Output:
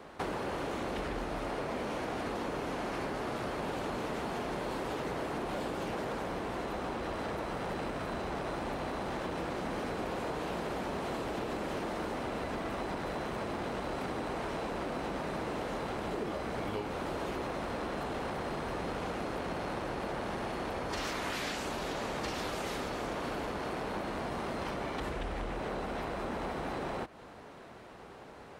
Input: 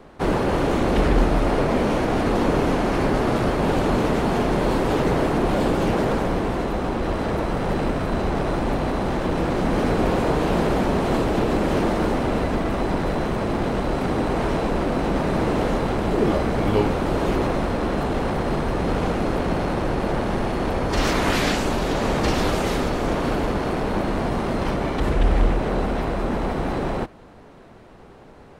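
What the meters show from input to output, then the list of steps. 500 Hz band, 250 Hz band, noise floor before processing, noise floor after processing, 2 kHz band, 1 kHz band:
-14.0 dB, -16.0 dB, -45 dBFS, -50 dBFS, -10.5 dB, -11.5 dB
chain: high-pass 43 Hz; bass shelf 420 Hz -8.5 dB; compression, threshold -34 dBFS, peak gain reduction 14.5 dB

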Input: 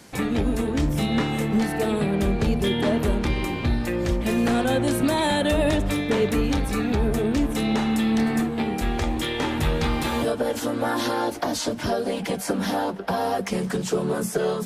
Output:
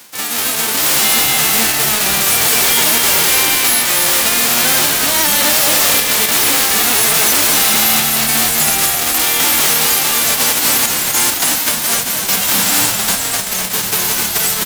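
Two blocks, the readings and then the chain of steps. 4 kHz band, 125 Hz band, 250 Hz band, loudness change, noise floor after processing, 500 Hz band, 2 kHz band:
+18.5 dB, -4.0 dB, -4.0 dB, +13.0 dB, -19 dBFS, -0.5 dB, +14.5 dB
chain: formants flattened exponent 0.1; random-step tremolo, depth 75%; sine folder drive 16 dB, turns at -6 dBFS; reverse; upward compressor, threshold -15 dBFS; reverse; high-pass 260 Hz 6 dB/octave; on a send: frequency-shifting echo 254 ms, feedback 46%, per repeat -78 Hz, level -5 dB; on the sum: trim -3.5 dB

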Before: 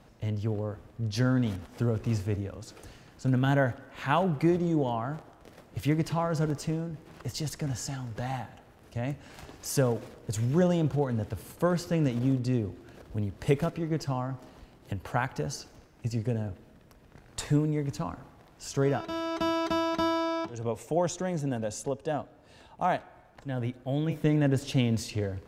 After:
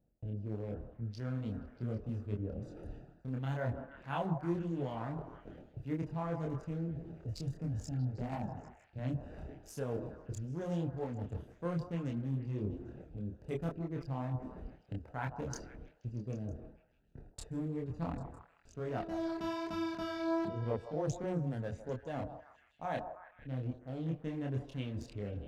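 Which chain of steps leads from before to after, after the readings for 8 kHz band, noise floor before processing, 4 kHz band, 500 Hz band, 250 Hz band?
-15.5 dB, -56 dBFS, -14.0 dB, -9.5 dB, -9.0 dB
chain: local Wiener filter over 41 samples; gate with hold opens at -46 dBFS; reverse; compression 5:1, threshold -41 dBFS, peak gain reduction 19.5 dB; reverse; chorus voices 6, 1 Hz, delay 27 ms, depth 3.6 ms; repeats whose band climbs or falls 159 ms, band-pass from 800 Hz, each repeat 0.7 oct, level -7.5 dB; trim +7.5 dB

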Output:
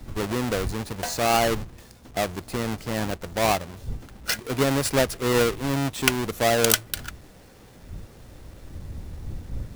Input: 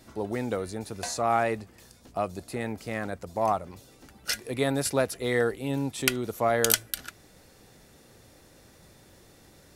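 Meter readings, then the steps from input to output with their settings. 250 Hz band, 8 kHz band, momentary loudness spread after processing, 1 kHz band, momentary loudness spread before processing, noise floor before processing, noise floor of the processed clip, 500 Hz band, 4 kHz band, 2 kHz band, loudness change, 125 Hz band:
+4.5 dB, +3.5 dB, 19 LU, +3.0 dB, 11 LU, -56 dBFS, -49 dBFS, +3.5 dB, +6.0 dB, +5.0 dB, +4.0 dB, +6.5 dB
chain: square wave that keeps the level; wind noise 88 Hz -39 dBFS

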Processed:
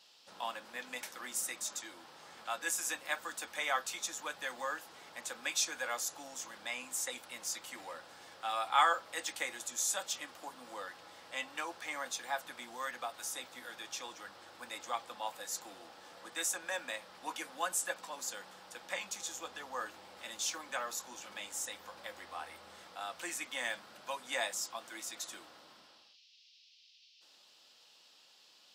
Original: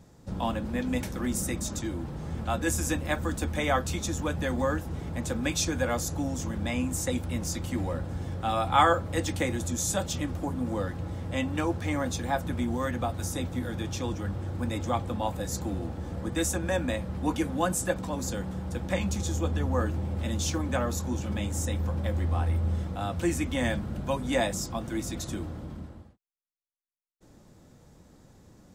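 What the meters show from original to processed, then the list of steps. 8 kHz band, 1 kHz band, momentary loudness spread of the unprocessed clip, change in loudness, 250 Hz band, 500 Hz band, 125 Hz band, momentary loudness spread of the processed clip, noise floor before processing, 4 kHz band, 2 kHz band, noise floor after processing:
-3.0 dB, -6.5 dB, 6 LU, -8.5 dB, -25.5 dB, -14.0 dB, under -35 dB, 14 LU, -56 dBFS, -3.0 dB, -3.5 dB, -63 dBFS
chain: high-pass 990 Hz 12 dB/octave; band noise 2.6–5.4 kHz -61 dBFS; trim -3 dB

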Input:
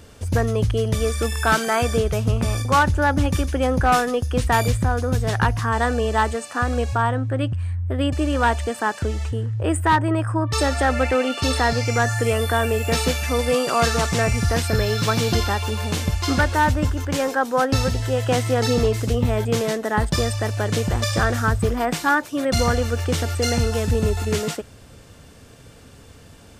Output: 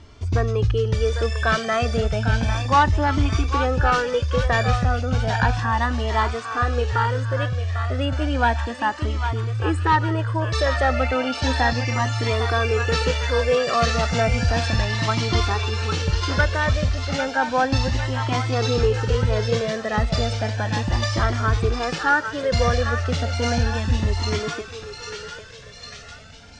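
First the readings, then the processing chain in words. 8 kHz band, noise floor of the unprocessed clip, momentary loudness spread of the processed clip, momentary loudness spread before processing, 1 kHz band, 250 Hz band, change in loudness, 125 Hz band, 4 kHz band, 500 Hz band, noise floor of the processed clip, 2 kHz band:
-6.0 dB, -45 dBFS, 5 LU, 5 LU, -0.5 dB, -3.5 dB, -0.5 dB, 0.0 dB, 0.0 dB, -1.5 dB, -39 dBFS, 0.0 dB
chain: low-pass 5.9 kHz 24 dB/octave; thinning echo 800 ms, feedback 66%, high-pass 880 Hz, level -5.5 dB; Shepard-style flanger rising 0.33 Hz; trim +3 dB

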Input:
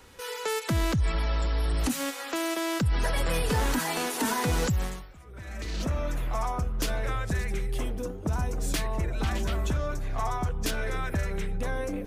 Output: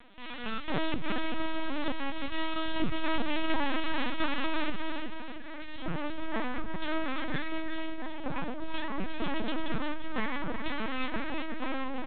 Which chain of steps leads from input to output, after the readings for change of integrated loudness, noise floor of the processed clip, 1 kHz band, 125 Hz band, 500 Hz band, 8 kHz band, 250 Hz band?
-5.5 dB, -37 dBFS, -2.5 dB, -15.5 dB, -5.0 dB, under -40 dB, -1.0 dB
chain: high-pass 130 Hz 6 dB/octave; wow and flutter 24 cents; phaser 0.32 Hz, delay 3.2 ms, feedback 38%; full-wave rectifier; multi-tap echo 340/357/678 ms -11.5/-6.5/-10.5 dB; LPC vocoder at 8 kHz pitch kept; trim -1.5 dB

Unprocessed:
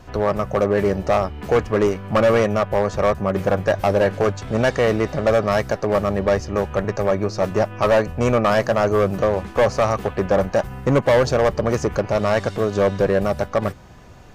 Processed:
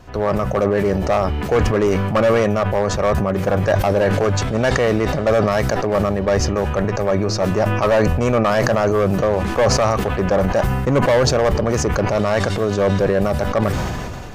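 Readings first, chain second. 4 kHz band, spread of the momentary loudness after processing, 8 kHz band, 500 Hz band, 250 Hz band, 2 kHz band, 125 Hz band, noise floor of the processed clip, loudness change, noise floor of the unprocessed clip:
+5.0 dB, 4 LU, +8.5 dB, +1.0 dB, +3.0 dB, +2.0 dB, +5.0 dB, -24 dBFS, +2.0 dB, -40 dBFS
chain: decay stretcher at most 25 dB/s

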